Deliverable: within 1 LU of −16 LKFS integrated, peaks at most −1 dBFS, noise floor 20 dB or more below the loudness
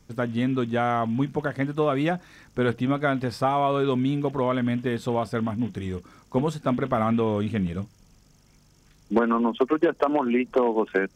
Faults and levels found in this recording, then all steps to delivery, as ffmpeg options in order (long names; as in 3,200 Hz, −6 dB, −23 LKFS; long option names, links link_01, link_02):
integrated loudness −25.0 LKFS; sample peak −11.0 dBFS; target loudness −16.0 LKFS
→ -af "volume=9dB"